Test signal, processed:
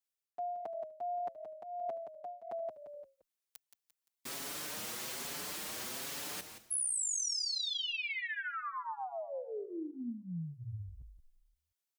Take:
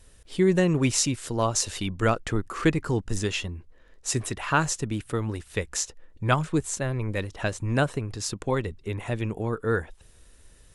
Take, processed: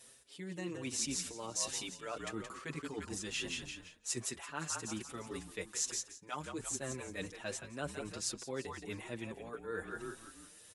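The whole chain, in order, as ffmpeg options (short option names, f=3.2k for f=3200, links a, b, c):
-filter_complex "[0:a]highpass=200,asplit=5[a][b][c][d][e];[b]adelay=173,afreqshift=-41,volume=-10dB[f];[c]adelay=346,afreqshift=-82,volume=-17.7dB[g];[d]adelay=519,afreqshift=-123,volume=-25.5dB[h];[e]adelay=692,afreqshift=-164,volume=-33.2dB[i];[a][f][g][h][i]amix=inputs=5:normalize=0,areverse,acompressor=threshold=-37dB:ratio=6,areverse,highshelf=f=2.6k:g=7,asplit=2[j][k];[k]adelay=5.8,afreqshift=1.2[l];[j][l]amix=inputs=2:normalize=1"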